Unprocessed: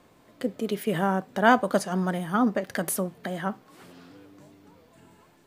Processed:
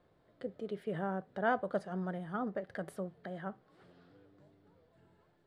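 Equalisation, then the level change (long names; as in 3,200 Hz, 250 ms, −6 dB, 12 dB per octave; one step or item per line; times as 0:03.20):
high-frequency loss of the air 120 metres
dynamic equaliser 4,600 Hz, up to −5 dB, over −49 dBFS, Q 1.1
graphic EQ with 15 bands 250 Hz −9 dB, 1,000 Hz −7 dB, 2,500 Hz −9 dB, 6,300 Hz −11 dB
−7.5 dB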